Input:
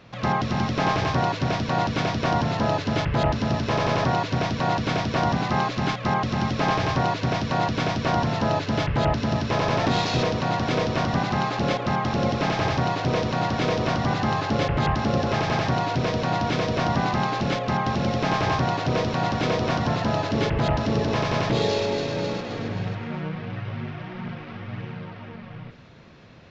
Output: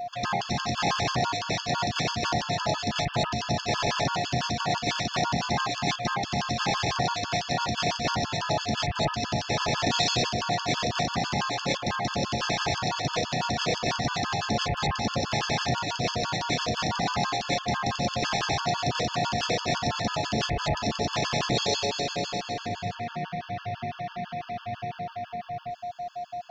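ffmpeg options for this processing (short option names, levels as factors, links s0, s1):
-af "crystalizer=i=5.5:c=0,aeval=exprs='val(0)+0.0501*sin(2*PI*710*n/s)':c=same,afftfilt=real='re*gt(sin(2*PI*6*pts/sr)*(1-2*mod(floor(b*sr/1024/870),2)),0)':imag='im*gt(sin(2*PI*6*pts/sr)*(1-2*mod(floor(b*sr/1024/870),2)),0)':win_size=1024:overlap=0.75,volume=0.631"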